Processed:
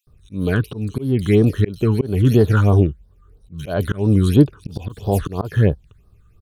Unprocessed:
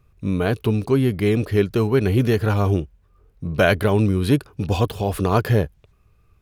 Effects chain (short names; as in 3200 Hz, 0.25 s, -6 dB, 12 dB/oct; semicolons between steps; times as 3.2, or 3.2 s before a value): bands offset in time highs, lows 70 ms, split 3300 Hz; auto swell 0.251 s; phaser stages 8, 3 Hz, lowest notch 650–2400 Hz; gain +5 dB